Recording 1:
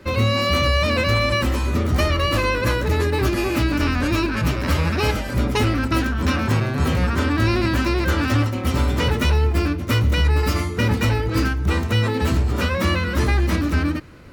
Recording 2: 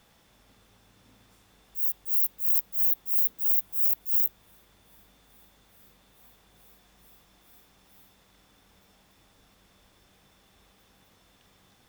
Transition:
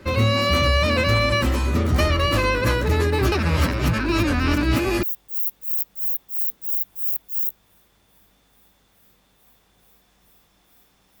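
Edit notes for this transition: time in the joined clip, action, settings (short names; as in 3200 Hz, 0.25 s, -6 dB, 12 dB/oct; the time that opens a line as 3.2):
recording 1
3.32–5.03 reverse
5.03 switch to recording 2 from 1.8 s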